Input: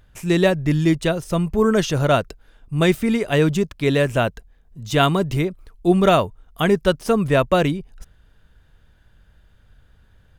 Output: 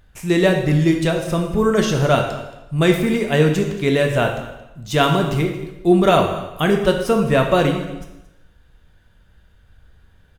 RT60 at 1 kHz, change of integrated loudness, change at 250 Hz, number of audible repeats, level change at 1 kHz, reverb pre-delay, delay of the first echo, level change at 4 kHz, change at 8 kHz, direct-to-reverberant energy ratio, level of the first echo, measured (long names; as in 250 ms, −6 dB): 0.95 s, +1.5 dB, +1.5 dB, 1, +2.0 dB, 4 ms, 225 ms, +1.5 dB, +1.5 dB, 3.0 dB, −18.5 dB